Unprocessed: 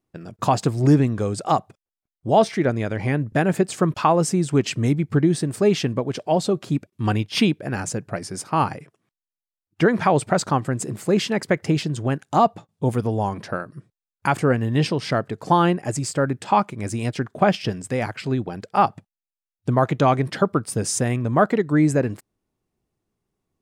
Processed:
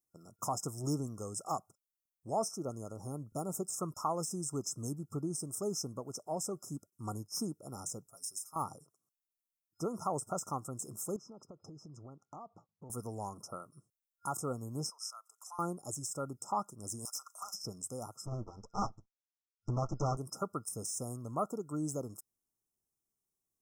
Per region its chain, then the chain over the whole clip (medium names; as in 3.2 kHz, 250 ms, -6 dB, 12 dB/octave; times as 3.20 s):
8.07–8.56 s: pre-emphasis filter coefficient 0.9 + comb 7.4 ms, depth 83%
11.16–12.90 s: compression 10:1, threshold -27 dBFS + distance through air 240 m
14.90–15.59 s: compression 2:1, threshold -25 dBFS + high-pass 1.1 kHz 24 dB/octave
17.05–17.54 s: high-pass 1.2 kHz 24 dB/octave + compression 8:1, threshold -32 dBFS + overdrive pedal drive 22 dB, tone 6.4 kHz, clips at -17.5 dBFS
18.26–20.17 s: comb filter that takes the minimum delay 9.1 ms + steep low-pass 6.2 kHz + bass shelf 300 Hz +9 dB
whole clip: FFT band-reject 1.4–5.1 kHz; de-esser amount 65%; pre-emphasis filter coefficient 0.9